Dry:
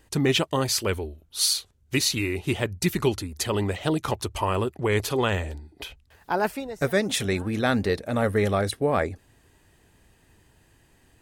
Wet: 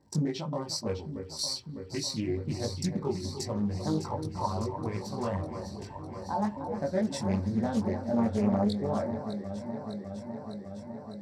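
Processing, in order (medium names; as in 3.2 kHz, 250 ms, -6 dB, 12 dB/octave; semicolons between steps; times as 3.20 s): local Wiener filter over 15 samples; compression 2.5:1, threshold -39 dBFS, peak gain reduction 14.5 dB; crackle 180 per s -52 dBFS; chorus voices 4, 0.45 Hz, delay 20 ms, depth 1.7 ms; spectral noise reduction 7 dB; echo whose repeats swap between lows and highs 302 ms, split 1.9 kHz, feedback 87%, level -9 dB; reverberation RT60 0.20 s, pre-delay 3 ms, DRR 6.5 dB; loudspeaker Doppler distortion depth 0.35 ms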